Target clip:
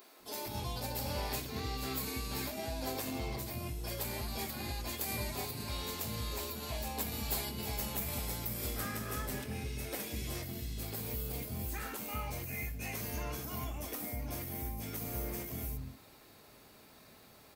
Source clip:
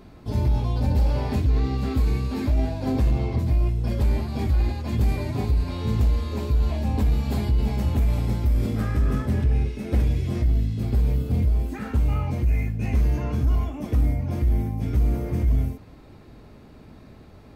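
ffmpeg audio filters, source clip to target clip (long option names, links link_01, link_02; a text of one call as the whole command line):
ffmpeg -i in.wav -filter_complex "[0:a]aemphasis=mode=production:type=riaa,acrossover=split=280[link_01][link_02];[link_01]adelay=200[link_03];[link_03][link_02]amix=inputs=2:normalize=0,volume=-5.5dB" out.wav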